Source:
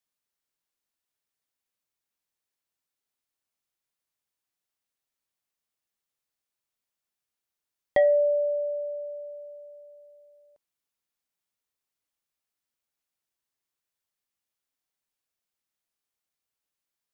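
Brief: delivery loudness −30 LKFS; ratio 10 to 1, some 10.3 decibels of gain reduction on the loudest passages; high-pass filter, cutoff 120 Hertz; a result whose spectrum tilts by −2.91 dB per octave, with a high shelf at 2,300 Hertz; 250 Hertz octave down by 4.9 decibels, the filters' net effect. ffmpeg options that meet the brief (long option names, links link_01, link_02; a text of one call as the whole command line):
ffmpeg -i in.wav -af "highpass=120,equalizer=frequency=250:width_type=o:gain=-6.5,highshelf=frequency=2300:gain=-4.5,acompressor=threshold=-29dB:ratio=10,volume=4dB" out.wav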